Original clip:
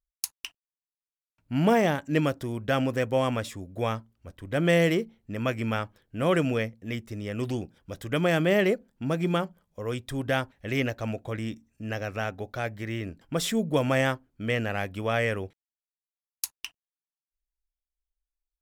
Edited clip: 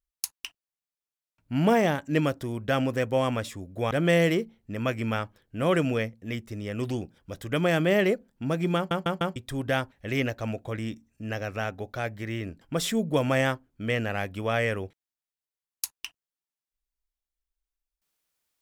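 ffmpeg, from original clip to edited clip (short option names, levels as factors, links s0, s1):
-filter_complex "[0:a]asplit=6[s0][s1][s2][s3][s4][s5];[s0]atrim=end=3.912[s6];[s1]atrim=start=4.508:end=9.512[s7];[s2]atrim=start=9.358:end=9.512[s8];[s3]atrim=start=9.358:end=9.512[s9];[s4]atrim=start=9.358:end=9.512[s10];[s5]atrim=start=9.958[s11];[s6][s7]acrossfade=d=0.004:c1=hsin:c2=hsin[s12];[s12][s8]acrossfade=d=0.004:c1=hsin:c2=hsin[s13];[s13][s9]acrossfade=d=0.004:c1=hsin:c2=hsin[s14];[s14][s10]acrossfade=d=0.004:c1=hsin:c2=hsin[s15];[s15][s11]acrossfade=d=0.004:c1=hsin:c2=hsin"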